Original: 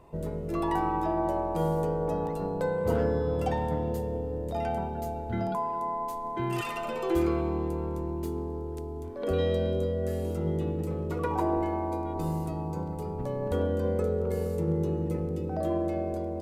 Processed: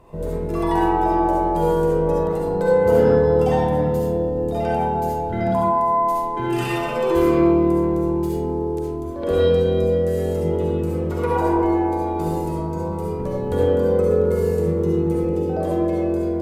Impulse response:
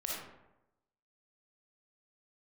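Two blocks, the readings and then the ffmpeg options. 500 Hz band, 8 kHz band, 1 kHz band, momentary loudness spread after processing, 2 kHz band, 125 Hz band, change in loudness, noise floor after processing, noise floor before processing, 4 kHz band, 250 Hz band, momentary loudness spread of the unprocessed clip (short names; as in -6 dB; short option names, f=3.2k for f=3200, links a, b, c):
+11.5 dB, n/a, +10.0 dB, 8 LU, +9.5 dB, +7.0 dB, +10.0 dB, -26 dBFS, -35 dBFS, +8.0 dB, +10.0 dB, 6 LU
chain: -filter_complex "[1:a]atrim=start_sample=2205,asetrate=36603,aresample=44100[a];[0:a][a]afir=irnorm=-1:irlink=0,volume=5.5dB"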